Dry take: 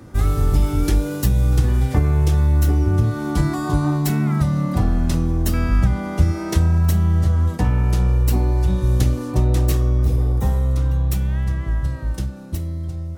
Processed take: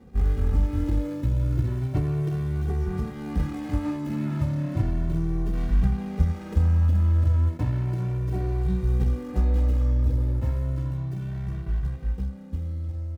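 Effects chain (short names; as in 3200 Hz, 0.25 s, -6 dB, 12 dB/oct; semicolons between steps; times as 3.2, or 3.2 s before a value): median filter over 41 samples; endless flanger 2.1 ms +0.33 Hz; gain -3 dB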